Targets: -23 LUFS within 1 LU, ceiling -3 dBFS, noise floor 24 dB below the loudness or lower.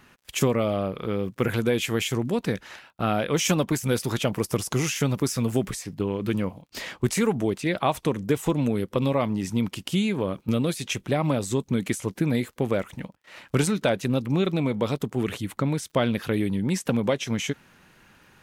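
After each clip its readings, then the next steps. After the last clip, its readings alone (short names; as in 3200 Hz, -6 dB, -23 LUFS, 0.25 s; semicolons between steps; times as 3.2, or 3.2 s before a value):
ticks 31/s; loudness -26.0 LUFS; peak -10.0 dBFS; loudness target -23.0 LUFS
-> de-click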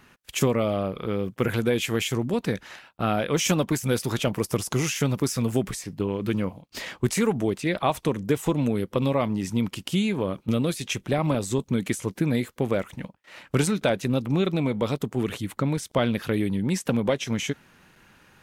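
ticks 0.22/s; loudness -26.0 LUFS; peak -10.0 dBFS; loudness target -23.0 LUFS
-> gain +3 dB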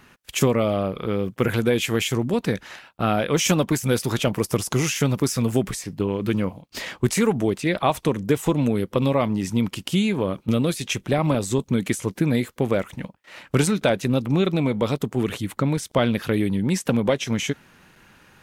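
loudness -23.0 LUFS; peak -7.0 dBFS; noise floor -59 dBFS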